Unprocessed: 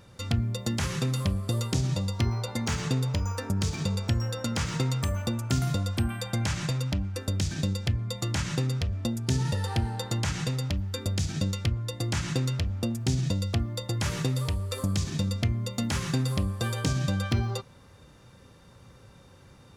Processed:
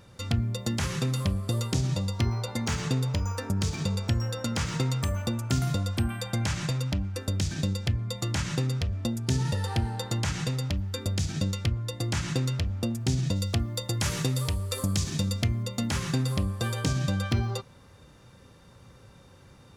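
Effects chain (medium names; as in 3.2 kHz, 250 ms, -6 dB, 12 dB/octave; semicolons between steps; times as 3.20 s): 13.36–15.63 s: treble shelf 4.6 kHz +6.5 dB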